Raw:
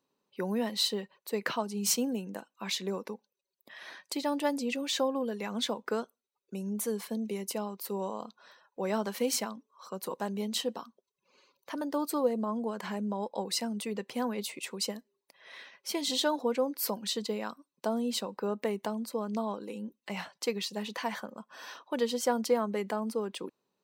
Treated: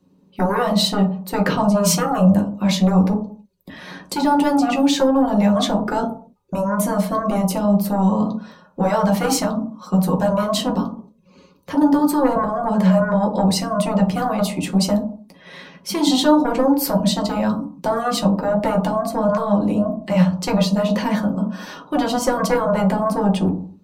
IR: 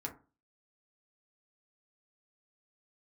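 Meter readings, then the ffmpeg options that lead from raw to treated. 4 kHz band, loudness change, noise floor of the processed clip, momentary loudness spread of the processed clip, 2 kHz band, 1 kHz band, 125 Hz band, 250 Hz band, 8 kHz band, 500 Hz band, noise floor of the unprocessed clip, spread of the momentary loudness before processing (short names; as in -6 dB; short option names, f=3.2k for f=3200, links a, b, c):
+8.5 dB, +14.5 dB, -52 dBFS, 9 LU, +11.0 dB, +16.0 dB, n/a, +17.5 dB, +8.5 dB, +12.5 dB, under -85 dBFS, 15 LU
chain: -filter_complex "[0:a]asubboost=boost=2.5:cutoff=150,acrossover=split=290|720|3600[a][b][c][d];[a]aeval=exprs='0.0355*sin(PI/2*5.01*val(0)/0.0355)':c=same[e];[e][b][c][d]amix=inputs=4:normalize=0[f];[1:a]atrim=start_sample=2205,afade=t=out:st=0.24:d=0.01,atrim=end_sample=11025,asetrate=28224,aresample=44100[g];[f][g]afir=irnorm=-1:irlink=0,volume=9dB"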